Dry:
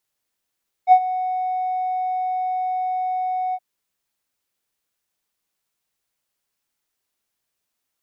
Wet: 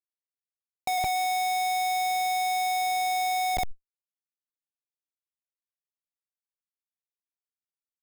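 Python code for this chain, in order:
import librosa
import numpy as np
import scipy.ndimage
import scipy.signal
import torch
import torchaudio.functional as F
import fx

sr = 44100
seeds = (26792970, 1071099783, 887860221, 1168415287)

y = fx.bandpass_edges(x, sr, low_hz=580.0, high_hz=2500.0)
y = fx.air_absorb(y, sr, metres=180.0)
y = fx.echo_feedback(y, sr, ms=79, feedback_pct=39, wet_db=-8.5)
y = fx.rider(y, sr, range_db=4, speed_s=2.0)
y = fx.peak_eq(y, sr, hz=1600.0, db=-8.0, octaves=1.3)
y = fx.schmitt(y, sr, flips_db=-38.0)
y = fx.env_flatten(y, sr, amount_pct=100)
y = y * librosa.db_to_amplitude(5.0)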